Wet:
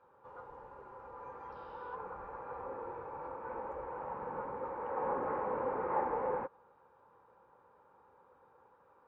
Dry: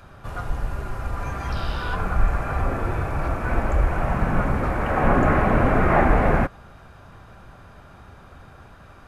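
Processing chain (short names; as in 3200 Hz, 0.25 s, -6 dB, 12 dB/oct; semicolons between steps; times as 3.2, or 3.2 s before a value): double band-pass 670 Hz, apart 0.82 oct; gain -6 dB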